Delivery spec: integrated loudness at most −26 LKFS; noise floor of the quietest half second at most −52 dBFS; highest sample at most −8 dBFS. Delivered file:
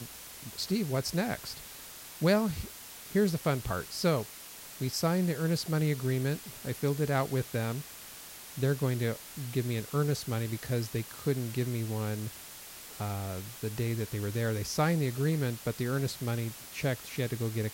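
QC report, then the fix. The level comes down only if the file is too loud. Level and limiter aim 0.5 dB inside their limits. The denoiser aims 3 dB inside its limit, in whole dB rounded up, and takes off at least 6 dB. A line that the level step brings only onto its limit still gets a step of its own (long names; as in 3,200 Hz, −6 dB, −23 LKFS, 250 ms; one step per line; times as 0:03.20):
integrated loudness −32.0 LKFS: in spec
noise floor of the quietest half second −47 dBFS: out of spec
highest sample −15.0 dBFS: in spec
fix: broadband denoise 8 dB, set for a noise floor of −47 dBFS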